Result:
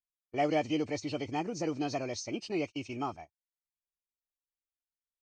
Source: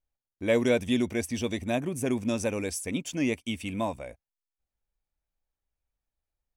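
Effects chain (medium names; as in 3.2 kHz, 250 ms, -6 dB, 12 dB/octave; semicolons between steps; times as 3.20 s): knee-point frequency compression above 1.2 kHz 1.5:1; gate -38 dBFS, range -22 dB; tape speed +26%; trim -5 dB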